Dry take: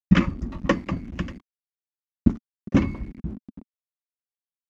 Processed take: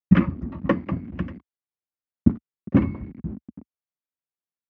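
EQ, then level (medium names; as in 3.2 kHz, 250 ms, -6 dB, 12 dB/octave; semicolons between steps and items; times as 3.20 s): high-pass 69 Hz 24 dB/octave; low-pass 2.1 kHz 12 dB/octave; bass shelf 430 Hz +3.5 dB; -1.5 dB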